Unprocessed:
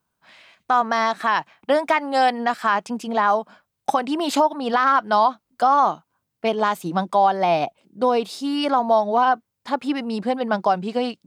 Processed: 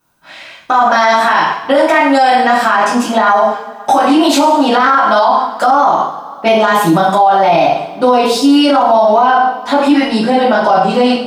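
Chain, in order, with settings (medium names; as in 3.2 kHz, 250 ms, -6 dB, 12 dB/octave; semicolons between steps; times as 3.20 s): two-slope reverb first 0.52 s, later 2.5 s, from -25 dB, DRR -9.5 dB; loudness maximiser +8 dB; trim -1 dB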